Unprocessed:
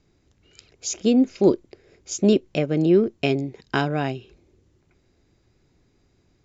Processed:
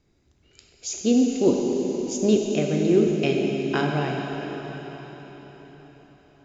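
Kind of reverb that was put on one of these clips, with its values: plate-style reverb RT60 4.8 s, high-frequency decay 1×, DRR 0 dB; gain -3.5 dB

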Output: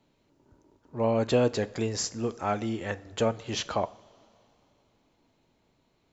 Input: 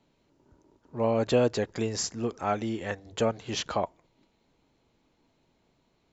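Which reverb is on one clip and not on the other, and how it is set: two-slope reverb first 0.46 s, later 3.1 s, from -17 dB, DRR 15 dB

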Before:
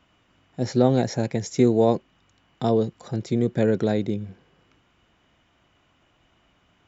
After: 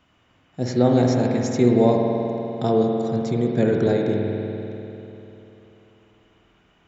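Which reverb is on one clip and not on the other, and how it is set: spring tank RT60 3.3 s, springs 49 ms, chirp 65 ms, DRR 0 dB

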